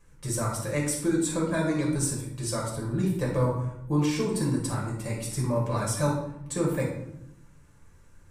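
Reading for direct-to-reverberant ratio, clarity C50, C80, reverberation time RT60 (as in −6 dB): −3.0 dB, 3.5 dB, 7.5 dB, 0.80 s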